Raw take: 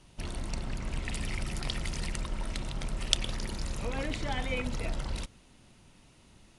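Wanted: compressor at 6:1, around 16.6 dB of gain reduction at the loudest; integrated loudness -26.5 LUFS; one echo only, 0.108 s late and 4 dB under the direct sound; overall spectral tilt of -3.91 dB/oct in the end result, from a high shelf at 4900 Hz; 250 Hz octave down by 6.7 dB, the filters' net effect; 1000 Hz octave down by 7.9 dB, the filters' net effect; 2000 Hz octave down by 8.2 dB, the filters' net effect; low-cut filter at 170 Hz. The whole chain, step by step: HPF 170 Hz; bell 250 Hz -6.5 dB; bell 1000 Hz -8.5 dB; bell 2000 Hz -6.5 dB; high shelf 4900 Hz -8 dB; compressor 6:1, threshold -47 dBFS; echo 0.108 s -4 dB; gain +22.5 dB

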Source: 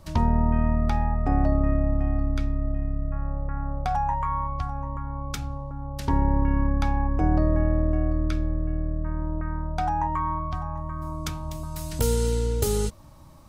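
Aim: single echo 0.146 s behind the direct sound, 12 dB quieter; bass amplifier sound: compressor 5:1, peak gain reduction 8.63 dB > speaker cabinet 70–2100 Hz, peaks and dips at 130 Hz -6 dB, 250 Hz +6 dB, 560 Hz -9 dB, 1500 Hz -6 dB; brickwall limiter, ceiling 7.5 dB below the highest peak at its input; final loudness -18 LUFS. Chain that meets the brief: limiter -17.5 dBFS; echo 0.146 s -12 dB; compressor 5:1, threshold -29 dBFS; speaker cabinet 70–2100 Hz, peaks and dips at 130 Hz -6 dB, 250 Hz +6 dB, 560 Hz -9 dB, 1500 Hz -6 dB; gain +19 dB

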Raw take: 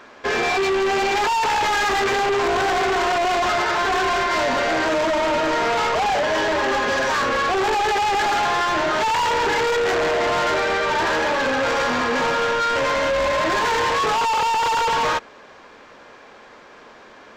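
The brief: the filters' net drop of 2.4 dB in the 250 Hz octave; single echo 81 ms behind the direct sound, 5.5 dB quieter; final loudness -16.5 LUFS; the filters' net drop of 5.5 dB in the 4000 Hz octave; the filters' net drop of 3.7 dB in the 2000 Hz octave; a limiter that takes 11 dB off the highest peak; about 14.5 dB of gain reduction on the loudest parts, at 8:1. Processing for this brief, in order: bell 250 Hz -3.5 dB; bell 2000 Hz -3.5 dB; bell 4000 Hz -6 dB; compressor 8:1, threshold -36 dBFS; limiter -39 dBFS; echo 81 ms -5.5 dB; gain +25 dB

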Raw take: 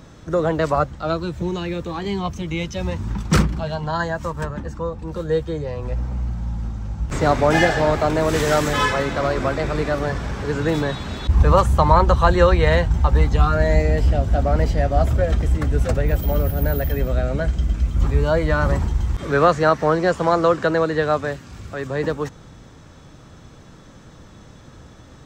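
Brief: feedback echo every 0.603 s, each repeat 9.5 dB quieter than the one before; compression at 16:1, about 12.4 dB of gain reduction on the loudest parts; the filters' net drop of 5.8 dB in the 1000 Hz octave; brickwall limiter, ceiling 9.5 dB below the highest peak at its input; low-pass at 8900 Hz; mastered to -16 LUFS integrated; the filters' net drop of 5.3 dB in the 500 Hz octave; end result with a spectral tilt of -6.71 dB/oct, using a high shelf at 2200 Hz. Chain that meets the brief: LPF 8900 Hz; bell 500 Hz -4.5 dB; bell 1000 Hz -4.5 dB; high shelf 2200 Hz -7.5 dB; compressor 16:1, threshold -23 dBFS; limiter -24 dBFS; feedback echo 0.603 s, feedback 33%, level -9.5 dB; gain +16.5 dB

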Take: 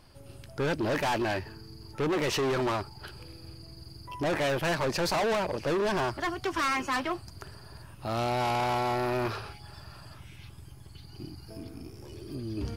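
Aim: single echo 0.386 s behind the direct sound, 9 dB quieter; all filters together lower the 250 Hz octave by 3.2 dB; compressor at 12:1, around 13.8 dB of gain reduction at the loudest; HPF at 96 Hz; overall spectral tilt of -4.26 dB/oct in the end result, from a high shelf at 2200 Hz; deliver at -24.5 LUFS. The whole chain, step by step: HPF 96 Hz; bell 250 Hz -4.5 dB; high shelf 2200 Hz -5 dB; compressor 12:1, threshold -41 dBFS; echo 0.386 s -9 dB; gain +20.5 dB

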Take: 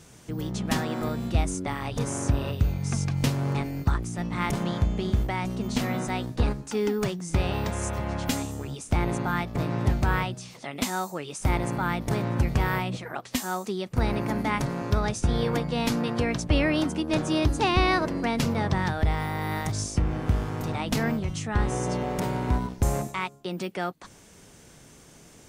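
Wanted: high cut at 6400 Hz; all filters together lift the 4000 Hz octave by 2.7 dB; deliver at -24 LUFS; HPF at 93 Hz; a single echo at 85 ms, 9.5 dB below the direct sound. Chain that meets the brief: HPF 93 Hz; LPF 6400 Hz; bell 4000 Hz +4 dB; echo 85 ms -9.5 dB; gain +4 dB

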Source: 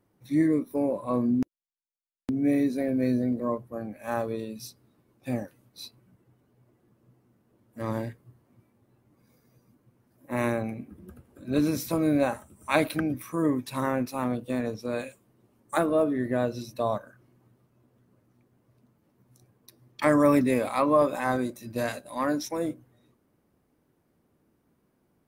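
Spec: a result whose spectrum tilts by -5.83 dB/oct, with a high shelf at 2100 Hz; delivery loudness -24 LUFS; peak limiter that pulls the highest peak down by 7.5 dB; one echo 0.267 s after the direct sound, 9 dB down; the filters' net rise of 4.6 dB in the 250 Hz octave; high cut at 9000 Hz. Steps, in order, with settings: LPF 9000 Hz; bell 250 Hz +5.5 dB; high shelf 2100 Hz -8 dB; limiter -15.5 dBFS; echo 0.267 s -9 dB; gain +2.5 dB

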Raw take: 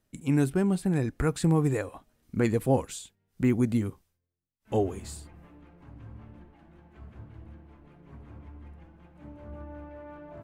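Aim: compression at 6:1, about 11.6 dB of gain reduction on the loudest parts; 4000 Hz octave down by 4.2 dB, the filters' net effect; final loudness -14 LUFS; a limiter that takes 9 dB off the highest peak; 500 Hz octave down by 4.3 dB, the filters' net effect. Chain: bell 500 Hz -5.5 dB; bell 4000 Hz -5 dB; compressor 6:1, threshold -33 dBFS; gain +29.5 dB; limiter -0.5 dBFS

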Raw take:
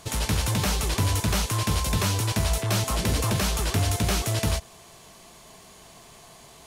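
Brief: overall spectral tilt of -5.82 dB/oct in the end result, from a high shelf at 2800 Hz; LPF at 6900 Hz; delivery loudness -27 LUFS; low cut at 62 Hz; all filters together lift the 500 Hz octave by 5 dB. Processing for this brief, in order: HPF 62 Hz; LPF 6900 Hz; bell 500 Hz +7 dB; high shelf 2800 Hz -8 dB; gain -0.5 dB

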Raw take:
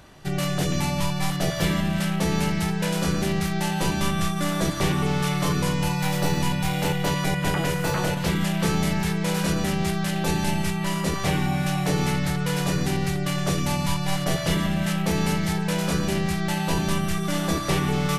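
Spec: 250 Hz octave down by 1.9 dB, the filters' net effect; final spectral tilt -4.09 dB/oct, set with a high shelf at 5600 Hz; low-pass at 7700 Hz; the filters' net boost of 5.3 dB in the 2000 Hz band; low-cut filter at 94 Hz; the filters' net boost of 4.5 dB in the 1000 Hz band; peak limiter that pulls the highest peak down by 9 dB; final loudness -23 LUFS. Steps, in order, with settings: HPF 94 Hz; LPF 7700 Hz; bell 250 Hz -3 dB; bell 1000 Hz +4.5 dB; bell 2000 Hz +6 dB; high shelf 5600 Hz -6 dB; gain +2.5 dB; limiter -14 dBFS

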